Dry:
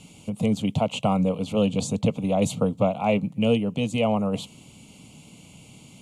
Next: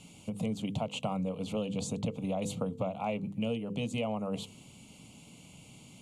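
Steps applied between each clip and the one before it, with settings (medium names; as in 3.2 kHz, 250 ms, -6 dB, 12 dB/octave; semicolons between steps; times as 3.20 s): hum notches 50/100/150/200/250/300/350/400/450/500 Hz; compression 4:1, threshold -26 dBFS, peak gain reduction 9 dB; trim -4.5 dB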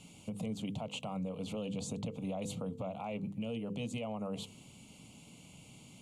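peak limiter -28.5 dBFS, peak gain reduction 7.5 dB; trim -2 dB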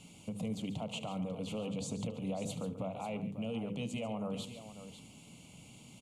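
multi-tap echo 73/140/545 ms -16.5/-13/-12 dB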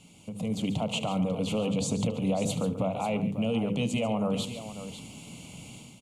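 level rider gain up to 10 dB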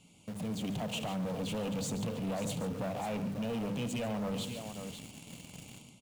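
in parallel at -12 dB: companded quantiser 2-bit; on the sum: saturation -24 dBFS, distortion -15 dB; trim -6.5 dB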